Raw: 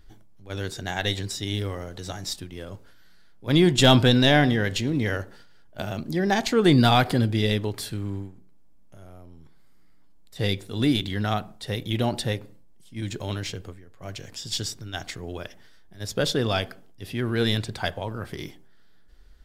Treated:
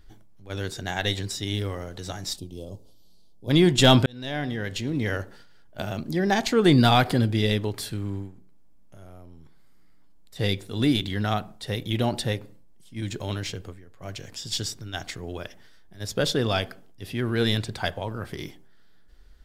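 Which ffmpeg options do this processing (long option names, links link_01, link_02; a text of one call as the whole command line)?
ffmpeg -i in.wav -filter_complex "[0:a]asplit=3[link_01][link_02][link_03];[link_01]afade=type=out:start_time=2.37:duration=0.02[link_04];[link_02]asuperstop=centerf=1700:order=4:qfactor=0.55,afade=type=in:start_time=2.37:duration=0.02,afade=type=out:start_time=3.49:duration=0.02[link_05];[link_03]afade=type=in:start_time=3.49:duration=0.02[link_06];[link_04][link_05][link_06]amix=inputs=3:normalize=0,asplit=2[link_07][link_08];[link_07]atrim=end=4.06,asetpts=PTS-STARTPTS,afade=type=out:start_time=4.056:duration=0.004:curve=hsin[link_09];[link_08]atrim=start=4.06,asetpts=PTS-STARTPTS,afade=type=in:duration=1.16[link_10];[link_09][link_10]concat=n=2:v=0:a=1" out.wav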